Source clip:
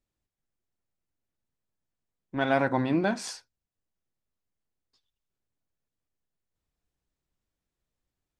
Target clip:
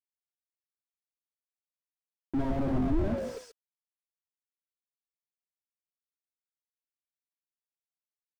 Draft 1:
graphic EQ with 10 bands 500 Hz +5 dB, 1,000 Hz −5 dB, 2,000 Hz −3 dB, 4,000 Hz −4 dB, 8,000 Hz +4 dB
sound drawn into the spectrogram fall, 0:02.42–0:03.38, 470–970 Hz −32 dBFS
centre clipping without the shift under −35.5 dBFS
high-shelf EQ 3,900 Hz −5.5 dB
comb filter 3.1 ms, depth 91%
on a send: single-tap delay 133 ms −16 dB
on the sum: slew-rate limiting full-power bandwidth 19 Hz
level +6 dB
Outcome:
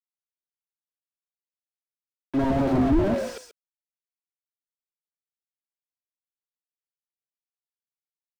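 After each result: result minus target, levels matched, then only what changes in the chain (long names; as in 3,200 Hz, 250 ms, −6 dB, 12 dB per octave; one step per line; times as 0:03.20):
centre clipping without the shift: distortion +10 dB; slew-rate limiting: distortion −10 dB
change: centre clipping without the shift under −42.5 dBFS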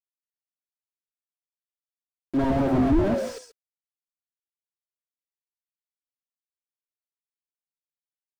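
slew-rate limiting: distortion −10 dB
change: slew-rate limiting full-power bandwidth 6.5 Hz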